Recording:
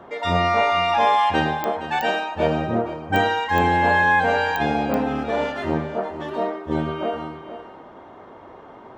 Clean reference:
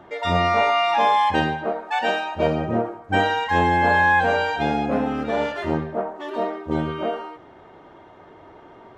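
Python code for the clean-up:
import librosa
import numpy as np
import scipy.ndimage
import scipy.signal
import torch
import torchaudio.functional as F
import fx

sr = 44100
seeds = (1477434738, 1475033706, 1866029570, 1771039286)

y = fx.fix_declick_ar(x, sr, threshold=10.0)
y = fx.noise_reduce(y, sr, print_start_s=7.92, print_end_s=8.42, reduce_db=6.0)
y = fx.fix_echo_inverse(y, sr, delay_ms=464, level_db=-12.0)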